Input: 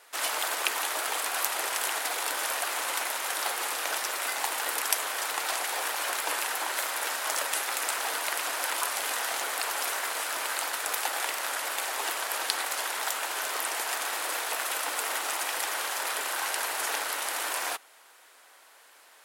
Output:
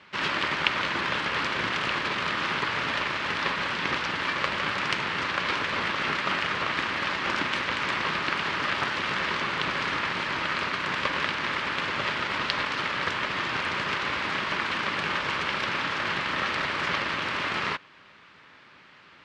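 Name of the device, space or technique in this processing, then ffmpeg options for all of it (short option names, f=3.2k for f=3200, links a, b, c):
ring modulator pedal into a guitar cabinet: -af "aeval=exprs='val(0)*sgn(sin(2*PI*290*n/s))':c=same,highpass=80,equalizer=f=170:t=q:w=4:g=3,equalizer=f=470:t=q:w=4:g=-5,equalizer=f=720:t=q:w=4:g=-9,equalizer=f=3.7k:t=q:w=4:g=-3,lowpass=f=3.9k:w=0.5412,lowpass=f=3.9k:w=1.3066,volume=6dB"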